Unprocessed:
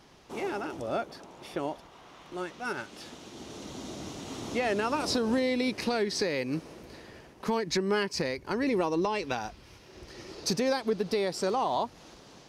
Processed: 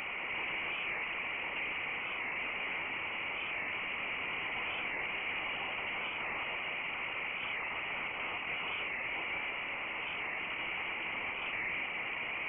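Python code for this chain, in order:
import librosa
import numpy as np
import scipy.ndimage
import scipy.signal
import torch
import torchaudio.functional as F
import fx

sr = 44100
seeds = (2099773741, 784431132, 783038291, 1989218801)

y = fx.bin_compress(x, sr, power=0.2)
y = scipy.signal.sosfilt(scipy.signal.butter(4, 290.0, 'highpass', fs=sr, output='sos'), y)
y = fx.fixed_phaser(y, sr, hz=2200.0, stages=8)
y = fx.whisperise(y, sr, seeds[0])
y = np.clip(10.0 ** (26.0 / 20.0) * y, -1.0, 1.0) / 10.0 ** (26.0 / 20.0)
y = fx.doubler(y, sr, ms=13.0, db=-13.0)
y = y + 10.0 ** (-9.5 / 20.0) * np.pad(y, (int(179 * sr / 1000.0), 0))[:len(y)]
y = fx.freq_invert(y, sr, carrier_hz=3100)
y = fx.record_warp(y, sr, rpm=45.0, depth_cents=100.0)
y = F.gain(torch.from_numpy(y), -8.5).numpy()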